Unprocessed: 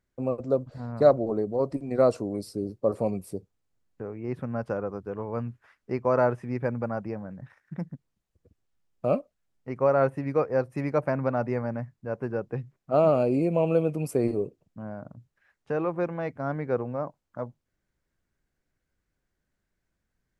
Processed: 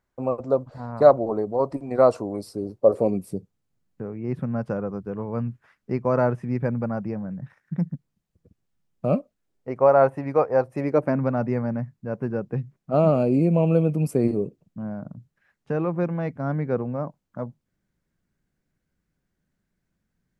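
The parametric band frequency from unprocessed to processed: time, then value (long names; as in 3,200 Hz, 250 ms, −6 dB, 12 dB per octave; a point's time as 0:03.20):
parametric band +9.5 dB 1.2 octaves
0:02.72 930 Hz
0:03.32 170 Hz
0:09.15 170 Hz
0:09.87 790 Hz
0:10.64 790 Hz
0:11.24 180 Hz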